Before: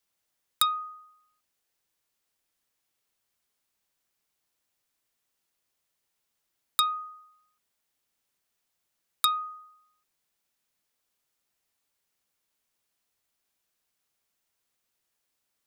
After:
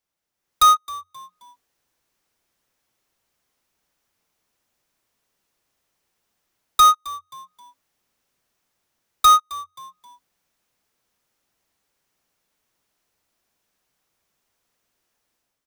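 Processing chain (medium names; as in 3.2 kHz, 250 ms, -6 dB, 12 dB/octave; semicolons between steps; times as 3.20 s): jump at every zero crossing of -26 dBFS; gate -23 dBFS, range -34 dB; waveshaping leveller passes 5; treble shelf 2.3 kHz -7.5 dB; level rider gain up to 10 dB; peaking EQ 5.8 kHz +3 dB 0.36 oct; frequency-shifting echo 265 ms, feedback 38%, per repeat -90 Hz, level -19.5 dB; trim -3.5 dB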